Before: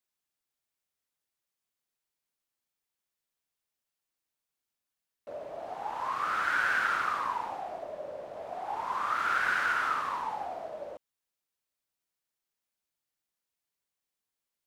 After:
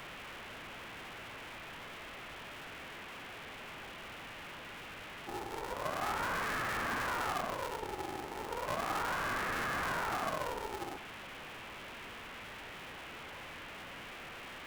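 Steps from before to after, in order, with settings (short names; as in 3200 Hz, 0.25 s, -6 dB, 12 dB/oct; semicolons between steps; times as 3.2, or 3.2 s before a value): delta modulation 16 kbps, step -39 dBFS; polarity switched at an audio rate 230 Hz; gain -1 dB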